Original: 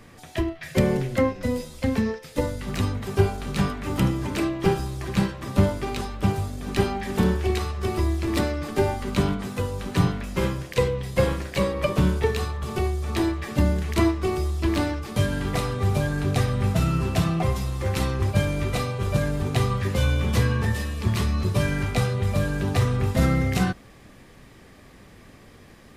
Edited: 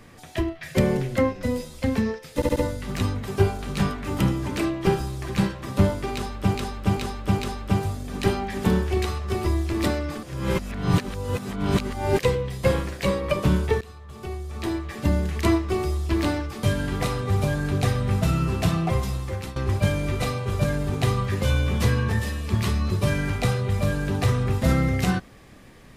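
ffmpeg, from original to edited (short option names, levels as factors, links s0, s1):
-filter_complex "[0:a]asplit=11[s0][s1][s2][s3][s4][s5][s6][s7][s8][s9][s10];[s0]atrim=end=2.422[s11];[s1]atrim=start=2.348:end=2.422[s12];[s2]atrim=start=2.348:end=2.422[s13];[s3]atrim=start=2.348:end=6.342[s14];[s4]atrim=start=5.918:end=6.342[s15];[s5]atrim=start=5.918:end=6.342[s16];[s6]atrim=start=5.918:end=8.762[s17];[s7]atrim=start=8.758:end=10.722,asetpts=PTS-STARTPTS,areverse[s18];[s8]atrim=start=10.718:end=12.34,asetpts=PTS-STARTPTS,afade=t=out:st=1.618:d=0.004:c=hsin:silence=0.1[s19];[s9]atrim=start=12.34:end=18.09,asetpts=PTS-STARTPTS,afade=t=in:d=1.51:silence=0.1,afade=t=out:st=5.34:d=0.41:silence=0.141254[s20];[s10]atrim=start=18.09,asetpts=PTS-STARTPTS,afade=t=in:d=0.004:c=hsin:silence=0.141254[s21];[s11][s12]acrossfade=d=0.004:c1=hsin:c2=hsin[s22];[s22][s13]acrossfade=d=0.004:c1=hsin:c2=hsin[s23];[s23][s14]acrossfade=d=0.004:c1=hsin:c2=hsin[s24];[s24][s15]acrossfade=d=0.004:c1=hsin:c2=hsin[s25];[s25][s16]acrossfade=d=0.004:c1=hsin:c2=hsin[s26];[s26][s17]acrossfade=d=0.004:c1=hsin:c2=hsin[s27];[s27][s18]acrossfade=d=0.004:c1=hsin:c2=hsin[s28];[s19][s20][s21]concat=n=3:v=0:a=1[s29];[s28][s29]acrossfade=d=0.004:c1=hsin:c2=hsin"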